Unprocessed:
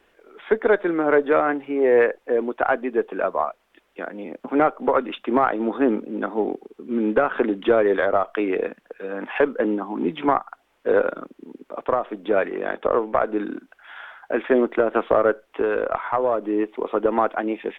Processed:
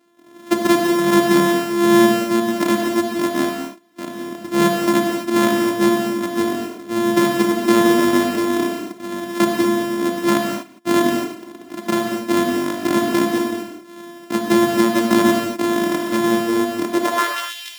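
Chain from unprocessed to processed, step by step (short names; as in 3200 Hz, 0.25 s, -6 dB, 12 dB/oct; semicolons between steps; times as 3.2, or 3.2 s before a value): sample sorter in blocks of 128 samples; high-pass sweep 210 Hz -> 3000 Hz, 16.88–17.39; non-linear reverb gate 0.27 s flat, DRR 0.5 dB; gain -2.5 dB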